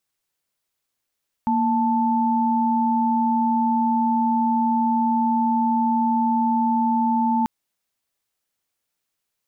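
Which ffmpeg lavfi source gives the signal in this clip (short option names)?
-f lavfi -i "aevalsrc='0.1*(sin(2*PI*233.08*t)+sin(2*PI*880*t))':d=5.99:s=44100"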